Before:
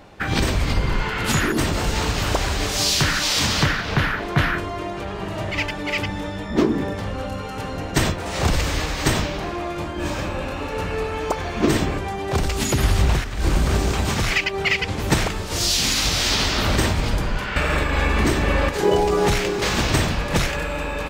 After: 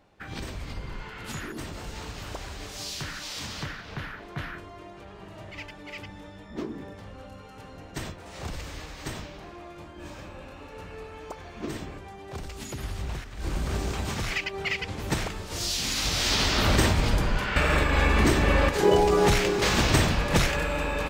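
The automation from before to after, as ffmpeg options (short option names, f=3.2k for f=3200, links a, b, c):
-af "volume=-2dB,afade=t=in:st=13.02:d=0.81:silence=0.446684,afade=t=in:st=15.85:d=0.83:silence=0.446684"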